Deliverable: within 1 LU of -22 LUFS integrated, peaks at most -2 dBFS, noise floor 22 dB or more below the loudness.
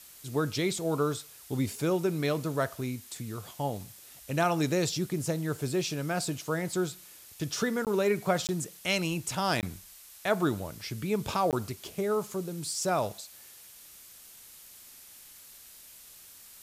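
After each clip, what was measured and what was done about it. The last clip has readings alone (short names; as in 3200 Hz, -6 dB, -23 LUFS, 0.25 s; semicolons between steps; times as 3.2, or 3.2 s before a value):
dropouts 4; longest dropout 18 ms; noise floor -52 dBFS; noise floor target -53 dBFS; loudness -31.0 LUFS; peak -13.5 dBFS; loudness target -22.0 LUFS
-> interpolate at 7.85/8.47/9.61/11.51, 18 ms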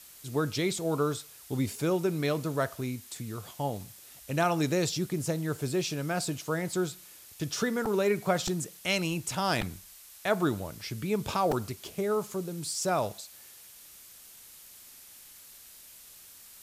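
dropouts 0; noise floor -52 dBFS; noise floor target -53 dBFS
-> denoiser 6 dB, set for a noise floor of -52 dBFS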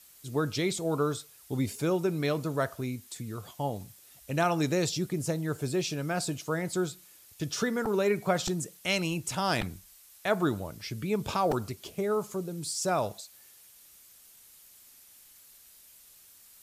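noise floor -56 dBFS; loudness -31.0 LUFS; peak -14.0 dBFS; loudness target -22.0 LUFS
-> gain +9 dB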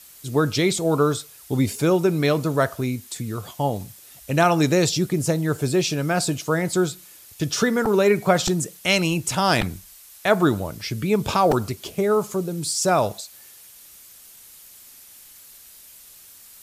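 loudness -22.0 LUFS; peak -5.0 dBFS; noise floor -47 dBFS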